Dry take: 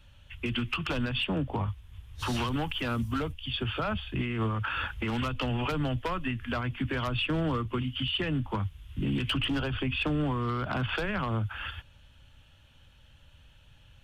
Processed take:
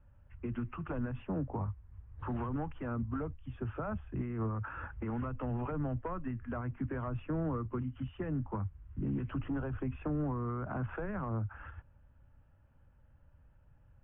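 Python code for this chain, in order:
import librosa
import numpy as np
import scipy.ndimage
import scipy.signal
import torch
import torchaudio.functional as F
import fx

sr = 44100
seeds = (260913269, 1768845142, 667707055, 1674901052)

y = scipy.signal.sosfilt(scipy.signal.bessel(6, 1100.0, 'lowpass', norm='mag', fs=sr, output='sos'), x)
y = y * librosa.db_to_amplitude(-5.0)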